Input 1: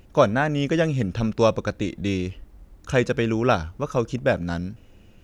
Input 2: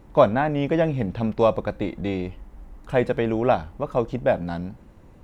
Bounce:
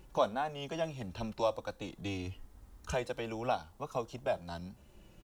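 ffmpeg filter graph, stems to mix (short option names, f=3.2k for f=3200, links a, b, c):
-filter_complex "[0:a]asplit=2[a][b];[b]adelay=3,afreqshift=-0.6[c];[a][c]amix=inputs=2:normalize=1,volume=-3dB[d];[1:a]equalizer=f=920:w=0.46:g=6.5,aexciter=amount=5.3:drive=6.5:freq=3.3k,volume=-1,adelay=0.4,volume=-18.5dB,asplit=2[e][f];[f]apad=whole_len=235214[g];[d][g]sidechaincompress=threshold=-41dB:ratio=8:attack=16:release=716[h];[h][e]amix=inputs=2:normalize=0"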